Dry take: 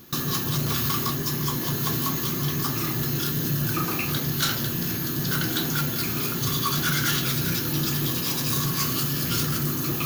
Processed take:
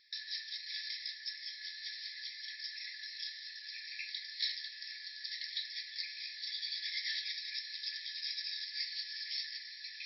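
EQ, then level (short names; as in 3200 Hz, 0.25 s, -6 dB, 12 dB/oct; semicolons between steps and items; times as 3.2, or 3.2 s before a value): brick-wall FIR band-pass 1700–5600 Hz; fixed phaser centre 2900 Hz, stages 6; -5.5 dB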